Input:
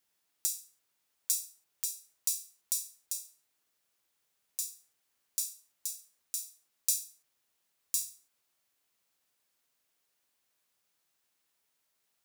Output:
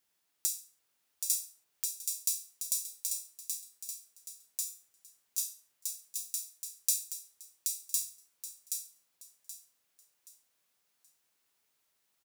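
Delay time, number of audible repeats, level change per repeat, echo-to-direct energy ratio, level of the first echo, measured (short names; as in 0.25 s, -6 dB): 0.776 s, 3, -10.0 dB, -4.5 dB, -5.0 dB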